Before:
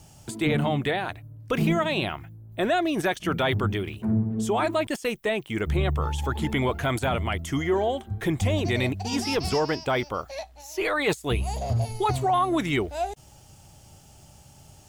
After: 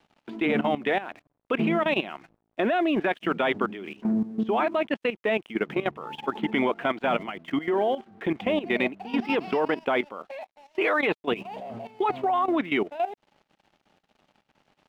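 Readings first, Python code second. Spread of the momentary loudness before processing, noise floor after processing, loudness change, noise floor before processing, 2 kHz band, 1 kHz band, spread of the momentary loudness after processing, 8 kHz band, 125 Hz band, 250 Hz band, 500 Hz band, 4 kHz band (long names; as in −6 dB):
8 LU, −78 dBFS, −0.5 dB, −52 dBFS, +0.5 dB, 0.0 dB, 9 LU, below −20 dB, −13.5 dB, 0.0 dB, +0.5 dB, −4.0 dB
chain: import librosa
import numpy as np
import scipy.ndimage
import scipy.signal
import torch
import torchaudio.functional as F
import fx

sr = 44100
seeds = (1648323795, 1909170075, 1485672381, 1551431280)

y = scipy.signal.sosfilt(scipy.signal.ellip(3, 1.0, 50, [210.0, 2900.0], 'bandpass', fs=sr, output='sos'), x)
y = np.sign(y) * np.maximum(np.abs(y) - 10.0 ** (-57.5 / 20.0), 0.0)
y = fx.level_steps(y, sr, step_db=14)
y = F.gain(torch.from_numpy(y), 5.0).numpy()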